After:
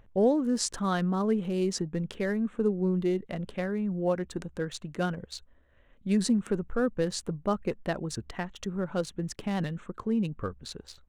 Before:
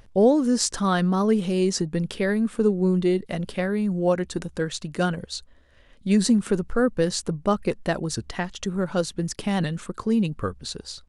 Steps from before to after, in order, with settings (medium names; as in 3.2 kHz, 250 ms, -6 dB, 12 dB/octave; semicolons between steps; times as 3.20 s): local Wiener filter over 9 samples; trim -6 dB